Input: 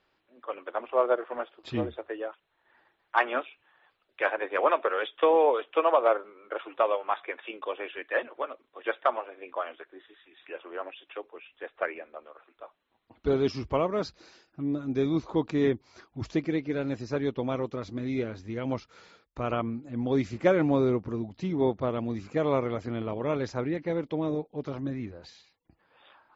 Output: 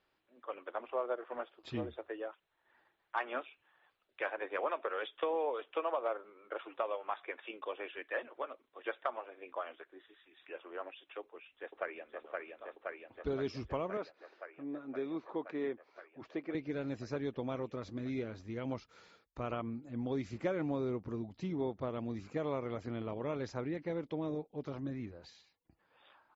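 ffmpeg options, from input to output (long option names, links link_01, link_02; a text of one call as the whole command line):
ffmpeg -i in.wav -filter_complex "[0:a]asplit=2[link_01][link_02];[link_02]afade=type=in:start_time=11.2:duration=0.01,afade=type=out:start_time=12.24:duration=0.01,aecho=0:1:520|1040|1560|2080|2600|3120|3640|4160|4680|5200|5720|6240:0.668344|0.534675|0.42774|0.342192|0.273754|0.219003|0.175202|0.140162|0.11213|0.0897036|0.0717629|0.0574103[link_03];[link_01][link_03]amix=inputs=2:normalize=0,asettb=1/sr,asplit=3[link_04][link_05][link_06];[link_04]atrim=end=13.974[link_07];[link_05]atrim=start=13.97:end=16.55,asetpts=PTS-STARTPTS,afade=type=in:duration=0.004:curve=qsin,afade=type=out:start_time=2.576:duration=0.004:curve=qsin,highpass=360,lowpass=2400[link_08];[link_06]atrim=start=16.546[link_09];[link_07][link_08]acrossfade=duration=0.004:curve1=hsin:curve2=qsin[link_10];[link_10][link_09]acrossfade=duration=0.004:curve1=qsin:curve2=hsin,acompressor=threshold=-27dB:ratio=2.5,volume=-6.5dB" out.wav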